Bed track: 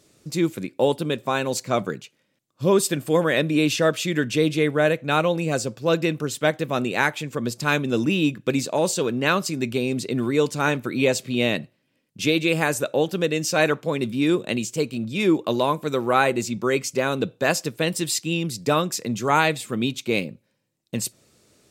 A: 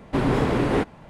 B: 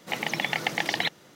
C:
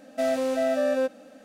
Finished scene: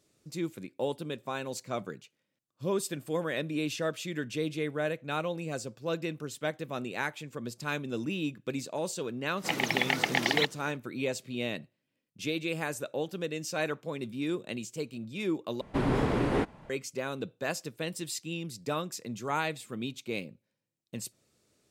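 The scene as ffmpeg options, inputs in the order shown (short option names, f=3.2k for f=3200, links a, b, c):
-filter_complex "[0:a]volume=-12dB,asplit=2[a][b];[a]atrim=end=15.614[c];[1:a]atrim=end=1.09,asetpts=PTS-STARTPTS,volume=-6dB[d];[b]atrim=start=16.696[e];[2:a]atrim=end=1.35,asetpts=PTS-STARTPTS,volume=-0.5dB,afade=t=in:d=0.004:c=hsin,afade=t=out:st=1.346:d=0.004:c=hsin,adelay=9370[f];[c][d]acrossfade=d=0.004:c1=hsin:c2=hsin[g];[g][e]acrossfade=d=0.004:c1=hsin:c2=hsin[h];[h][f]amix=inputs=2:normalize=0"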